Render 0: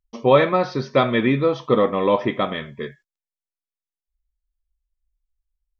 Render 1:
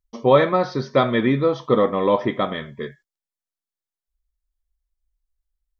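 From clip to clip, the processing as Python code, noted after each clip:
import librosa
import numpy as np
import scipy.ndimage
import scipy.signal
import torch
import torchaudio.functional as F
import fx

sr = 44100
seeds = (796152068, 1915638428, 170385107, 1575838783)

y = fx.peak_eq(x, sr, hz=2600.0, db=-8.5, octaves=0.31)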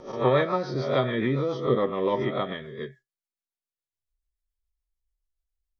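y = fx.spec_swells(x, sr, rise_s=0.64)
y = fx.rotary(y, sr, hz=7.0)
y = fx.comb_fb(y, sr, f0_hz=130.0, decay_s=0.15, harmonics='odd', damping=0.0, mix_pct=60)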